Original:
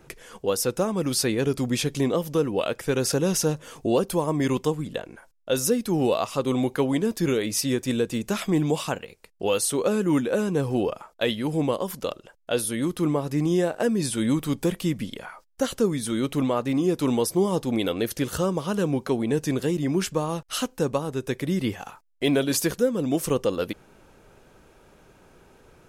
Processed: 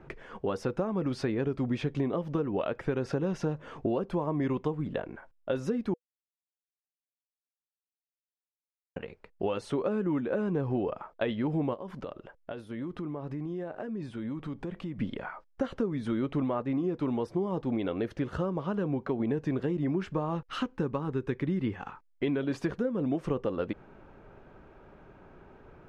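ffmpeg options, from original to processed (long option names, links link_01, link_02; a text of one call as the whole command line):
ffmpeg -i in.wav -filter_complex "[0:a]asplit=3[link_01][link_02][link_03];[link_01]afade=type=out:start_time=11.73:duration=0.02[link_04];[link_02]acompressor=threshold=-35dB:ratio=6:attack=3.2:release=140:knee=1:detection=peak,afade=type=in:start_time=11.73:duration=0.02,afade=type=out:start_time=14.97:duration=0.02[link_05];[link_03]afade=type=in:start_time=14.97:duration=0.02[link_06];[link_04][link_05][link_06]amix=inputs=3:normalize=0,asettb=1/sr,asplit=3[link_07][link_08][link_09];[link_07]atrim=end=20.354[link_10];[link_08]atrim=start=20.35:end=22.43,asetpts=PTS-STARTPTS,afade=type=in:duration=0.004:curve=qsin,afade=type=out:start_time=2.076:duration=0.004:curve=qsin,equalizer=frequency=650:width_type=o:width=0.47:gain=-10.5[link_11];[link_09]atrim=start=22.426[link_12];[link_10][link_11]acrossfade=duration=0.004:curve1=hsin:curve2=qsin[link_13];[link_13][link_12]acrossfade=duration=0.004:curve1=qsin:curve2=hsin,asplit=5[link_14][link_15][link_16][link_17][link_18];[link_14]atrim=end=5.94,asetpts=PTS-STARTPTS,afade=type=out:start_time=5.936:duration=0.004:curve=hsin[link_19];[link_15]atrim=start=5.94:end=8.96,asetpts=PTS-STARTPTS,volume=0[link_20];[link_16]atrim=start=8.96:end=16.622,asetpts=PTS-STARTPTS,afade=type=in:duration=0.004:curve=hsin[link_21];[link_17]atrim=start=16.618:end=19.202,asetpts=PTS-STARTPTS,volume=-3.5dB[link_22];[link_18]atrim=start=19.198[link_23];[link_19][link_20][link_21]concat=n=3:v=0:a=1[link_24];[link_24][link_22]acrossfade=duration=0.004:curve1=hsin:curve2=hsin[link_25];[link_25][link_23]acrossfade=duration=0.004:curve1=hsin:curve2=hsin,lowpass=1800,bandreject=frequency=490:width=14,acompressor=threshold=-28dB:ratio=6,volume=1.5dB" out.wav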